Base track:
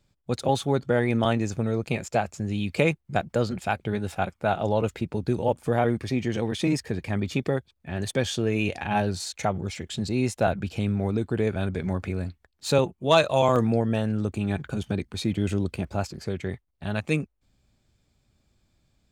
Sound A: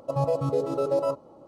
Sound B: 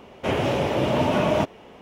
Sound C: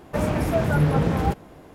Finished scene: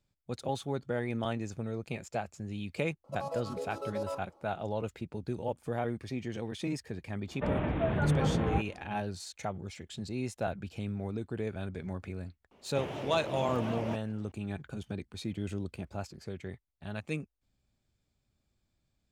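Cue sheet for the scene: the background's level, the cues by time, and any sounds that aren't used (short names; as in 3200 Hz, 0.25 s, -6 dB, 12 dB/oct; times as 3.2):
base track -10.5 dB
3.04 add A -5 dB + HPF 1100 Hz 6 dB/oct
7.28 add C -8 dB + downsampling 8000 Hz
12.51 add B -16 dB + record warp 78 rpm, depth 160 cents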